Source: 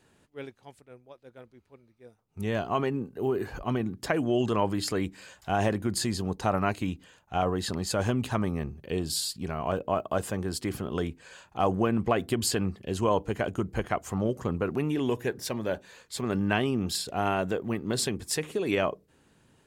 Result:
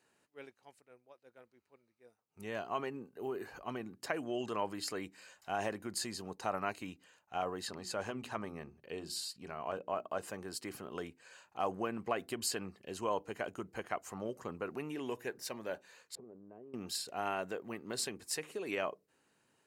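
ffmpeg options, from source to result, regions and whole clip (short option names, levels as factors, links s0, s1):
-filter_complex "[0:a]asettb=1/sr,asplit=3[s0][s1][s2];[s0]atrim=end=7.674[s3];[s1]atrim=start=7.67:end=10.28,asetpts=PTS-STARTPTS,afade=t=in:d=0.004:c=qsin,afade=t=out:st=2.606:d=0.004:c=qsin,highshelf=f=7500:g=-8,bandreject=f=60:t=h:w=6,bandreject=f=120:t=h:w=6,bandreject=f=180:t=h:w=6,bandreject=f=240:t=h:w=6,bandreject=f=300:t=h:w=6,bandreject=f=360:t=h:w=6[s4];[s2]atrim=start=10.276[s5];[s3][s4]acrossfade=d=0.004:c1=hsin:c2=qsin[s6];[s6][s5]acrossfade=d=0.004:c1=qsin:c2=hsin,asettb=1/sr,asplit=3[s7][s8][s9];[s7]atrim=end=16.154[s10];[s8]atrim=start=16.15:end=16.74,asetpts=PTS-STARTPTS,afade=t=in:d=0.004:c=qsin,afade=t=out:st=0.586:d=0.004:c=qsin,lowpass=f=470:t=q:w=1.9,acompressor=threshold=0.0141:ratio=10:attack=3.2:release=140:knee=1:detection=peak[s11];[s9]atrim=start=16.736[s12];[s10][s11]acrossfade=d=0.004:c1=hsin:c2=qsin[s13];[s13][s12]acrossfade=d=0.004:c1=qsin:c2=hsin,highpass=f=510:p=1,bandreject=f=3400:w=8.1,volume=0.447"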